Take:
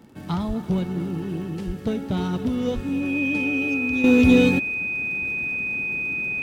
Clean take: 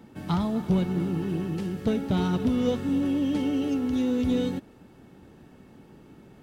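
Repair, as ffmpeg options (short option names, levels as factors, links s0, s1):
-filter_complex "[0:a]adeclick=t=4,bandreject=f=2500:w=30,asplit=3[s0][s1][s2];[s0]afade=t=out:st=0.47:d=0.02[s3];[s1]highpass=f=140:w=0.5412,highpass=f=140:w=1.3066,afade=t=in:st=0.47:d=0.02,afade=t=out:st=0.59:d=0.02[s4];[s2]afade=t=in:st=0.59:d=0.02[s5];[s3][s4][s5]amix=inputs=3:normalize=0,asplit=3[s6][s7][s8];[s6]afade=t=out:st=1.66:d=0.02[s9];[s7]highpass=f=140:w=0.5412,highpass=f=140:w=1.3066,afade=t=in:st=1.66:d=0.02,afade=t=out:st=1.78:d=0.02[s10];[s8]afade=t=in:st=1.78:d=0.02[s11];[s9][s10][s11]amix=inputs=3:normalize=0,asplit=3[s12][s13][s14];[s12]afade=t=out:st=2.74:d=0.02[s15];[s13]highpass=f=140:w=0.5412,highpass=f=140:w=1.3066,afade=t=in:st=2.74:d=0.02,afade=t=out:st=2.86:d=0.02[s16];[s14]afade=t=in:st=2.86:d=0.02[s17];[s15][s16][s17]amix=inputs=3:normalize=0,asetnsamples=n=441:p=0,asendcmd='4.04 volume volume -10dB',volume=1"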